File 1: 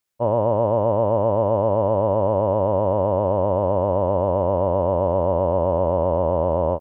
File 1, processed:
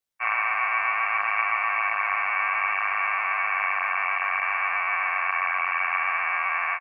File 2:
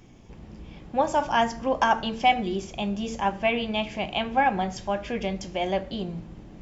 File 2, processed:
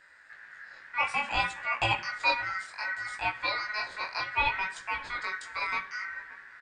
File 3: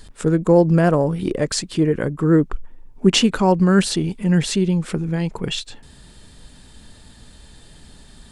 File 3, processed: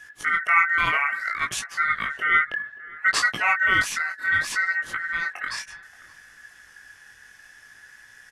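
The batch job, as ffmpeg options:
ffmpeg -i in.wav -filter_complex "[0:a]aeval=exprs='val(0)*sin(2*PI*1700*n/s)':channel_layout=same,flanger=delay=16.5:depth=6.8:speed=0.62,asplit=2[link_01][link_02];[link_02]adelay=578,lowpass=frequency=1100:poles=1,volume=-18dB,asplit=2[link_03][link_04];[link_04]adelay=578,lowpass=frequency=1100:poles=1,volume=0.46,asplit=2[link_05][link_06];[link_06]adelay=578,lowpass=frequency=1100:poles=1,volume=0.46,asplit=2[link_07][link_08];[link_08]adelay=578,lowpass=frequency=1100:poles=1,volume=0.46[link_09];[link_01][link_03][link_05][link_07][link_09]amix=inputs=5:normalize=0" out.wav

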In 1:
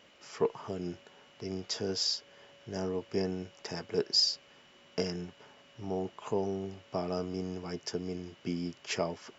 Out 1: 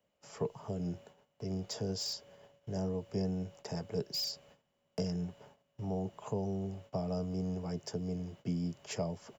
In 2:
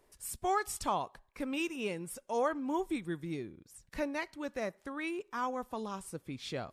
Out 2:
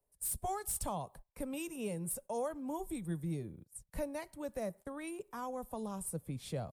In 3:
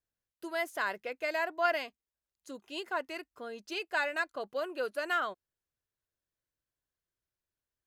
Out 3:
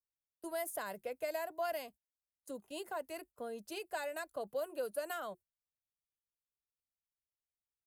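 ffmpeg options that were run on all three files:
ffmpeg -i in.wav -filter_complex "[0:a]bandreject=frequency=360:width=12,acrossover=split=200|3000[link_01][link_02][link_03];[link_02]acompressor=threshold=-41dB:ratio=2[link_04];[link_01][link_04][link_03]amix=inputs=3:normalize=0,agate=range=-18dB:threshold=-55dB:ratio=16:detection=peak,firequalizer=gain_entry='entry(170,0);entry(270,-8);entry(580,-2);entry(1300,-12);entry(2400,-14);entry(6000,-11);entry(9200,3)':delay=0.05:min_phase=1,acrossover=split=200|1500[link_05][link_06][link_07];[link_07]asoftclip=type=hard:threshold=-38.5dB[link_08];[link_05][link_06][link_08]amix=inputs=3:normalize=0,volume=5.5dB" out.wav

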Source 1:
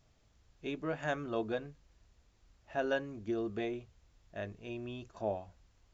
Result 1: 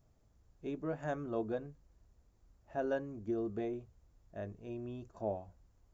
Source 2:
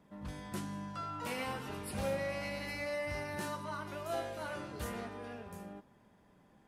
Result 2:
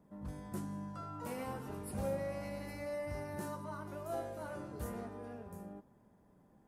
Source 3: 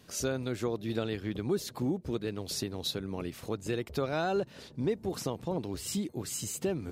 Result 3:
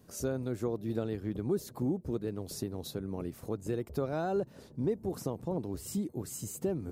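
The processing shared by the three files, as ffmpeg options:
ffmpeg -i in.wav -af "equalizer=frequency=3100:width=0.56:gain=-13.5" out.wav

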